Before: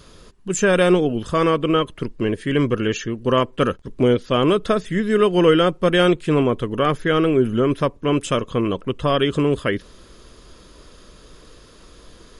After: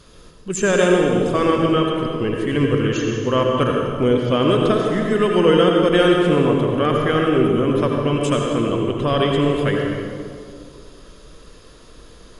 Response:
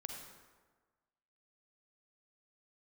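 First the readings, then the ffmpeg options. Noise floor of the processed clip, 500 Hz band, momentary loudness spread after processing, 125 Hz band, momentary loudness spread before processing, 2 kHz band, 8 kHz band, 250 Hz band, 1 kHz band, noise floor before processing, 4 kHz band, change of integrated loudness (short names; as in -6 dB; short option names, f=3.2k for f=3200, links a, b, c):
-45 dBFS, +1.5 dB, 7 LU, +2.5 dB, 8 LU, +0.5 dB, n/a, +1.5 dB, +1.0 dB, -48 dBFS, +0.5 dB, +1.5 dB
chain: -filter_complex "[1:a]atrim=start_sample=2205,asetrate=25137,aresample=44100[a];[0:a][a]afir=irnorm=-1:irlink=0"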